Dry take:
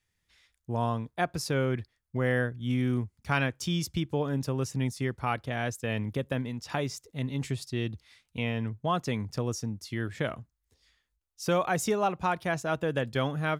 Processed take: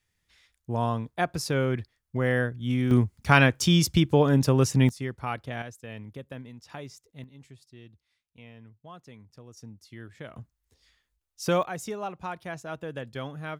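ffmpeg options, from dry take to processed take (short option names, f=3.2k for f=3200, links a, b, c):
-af "asetnsamples=n=441:p=0,asendcmd='2.91 volume volume 9dB;4.89 volume volume -2dB;5.62 volume volume -9.5dB;7.24 volume volume -18dB;9.57 volume volume -11dB;10.36 volume volume 2dB;11.63 volume volume -7dB',volume=2dB"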